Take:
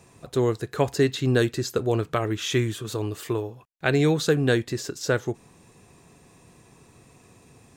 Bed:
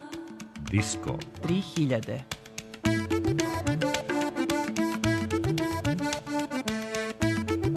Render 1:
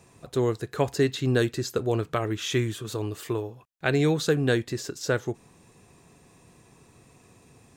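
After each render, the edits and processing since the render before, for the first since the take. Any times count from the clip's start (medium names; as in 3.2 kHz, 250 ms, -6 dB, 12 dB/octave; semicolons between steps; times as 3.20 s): trim -2 dB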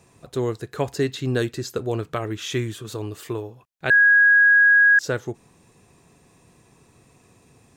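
3.90–4.99 s: bleep 1.65 kHz -11 dBFS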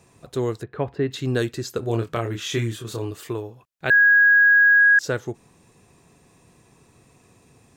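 0.63–1.11 s: distance through air 460 m; 1.80–3.11 s: doubling 26 ms -5 dB; 3.86–4.80 s: decimation joined by straight lines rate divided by 2×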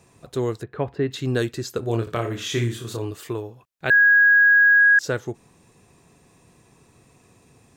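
2.01–2.97 s: flutter echo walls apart 10 m, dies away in 0.35 s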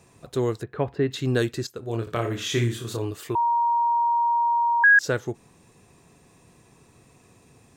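1.67–2.27 s: fade in, from -14 dB; 3.35–4.84 s: bleep 941 Hz -18.5 dBFS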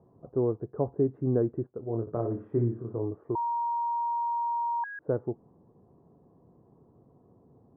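Bessel low-pass 610 Hz, order 6; bass shelf 95 Hz -10.5 dB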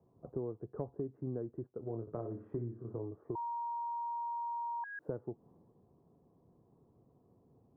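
compression 6:1, threshold -38 dBFS, peak gain reduction 16 dB; three bands expanded up and down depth 40%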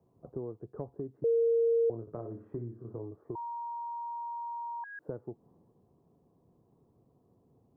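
1.24–1.90 s: bleep 462 Hz -23 dBFS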